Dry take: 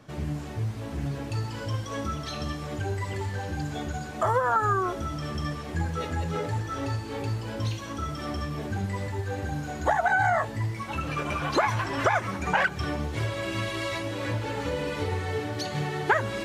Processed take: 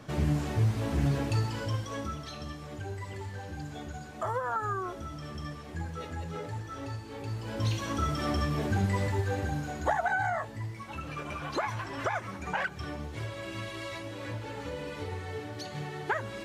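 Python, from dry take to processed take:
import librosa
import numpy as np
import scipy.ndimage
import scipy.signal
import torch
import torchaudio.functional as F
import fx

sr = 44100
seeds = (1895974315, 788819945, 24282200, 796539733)

y = fx.gain(x, sr, db=fx.line((1.16, 4.0), (2.39, -8.0), (7.2, -8.0), (7.81, 2.5), (9.1, 2.5), (10.4, -8.0)))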